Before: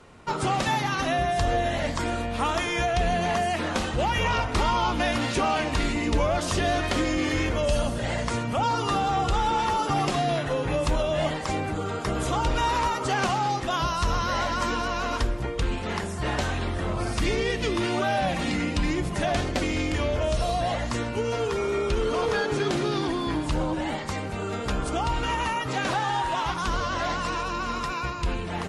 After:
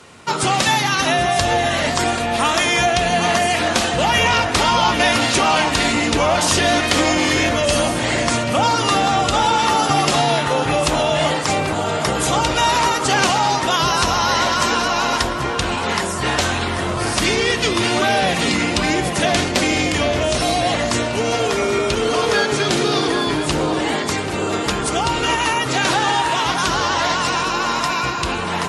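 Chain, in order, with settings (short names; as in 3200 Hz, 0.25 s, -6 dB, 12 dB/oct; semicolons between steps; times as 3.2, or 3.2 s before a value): HPF 87 Hz 12 dB/oct; high shelf 2100 Hz +10 dB; on a send: tape echo 0.787 s, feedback 76%, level -6 dB, low-pass 2100 Hz; on the sum: gain +5.5 dB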